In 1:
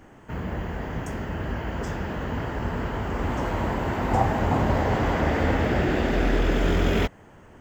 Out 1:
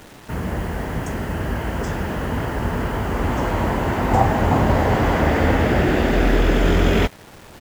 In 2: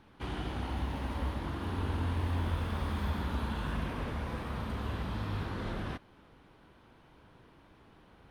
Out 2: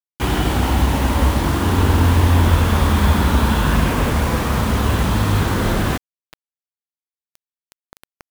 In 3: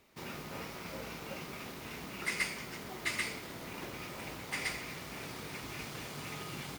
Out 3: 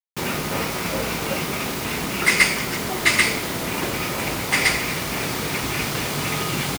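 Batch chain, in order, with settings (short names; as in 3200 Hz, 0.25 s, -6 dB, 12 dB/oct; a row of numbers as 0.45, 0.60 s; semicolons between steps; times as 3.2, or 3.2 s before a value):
downsampling 32000 Hz; bit-crush 8-bit; normalise peaks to -2 dBFS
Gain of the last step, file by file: +5.5, +18.5, +18.0 dB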